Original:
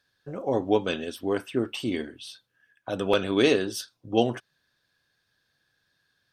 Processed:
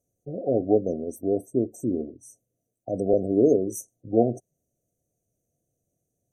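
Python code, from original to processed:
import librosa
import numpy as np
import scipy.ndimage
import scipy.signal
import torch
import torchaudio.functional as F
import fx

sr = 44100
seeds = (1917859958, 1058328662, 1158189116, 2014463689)

y = fx.brickwall_bandstop(x, sr, low_hz=750.0, high_hz=5800.0)
y = fx.spec_gate(y, sr, threshold_db=-30, keep='strong')
y = y * 10.0 ** (2.5 / 20.0)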